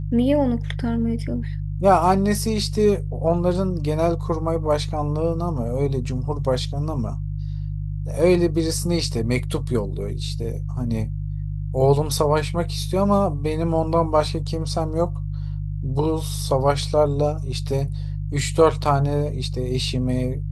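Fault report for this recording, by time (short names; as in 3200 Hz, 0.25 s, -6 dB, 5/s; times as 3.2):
hum 50 Hz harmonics 3 -27 dBFS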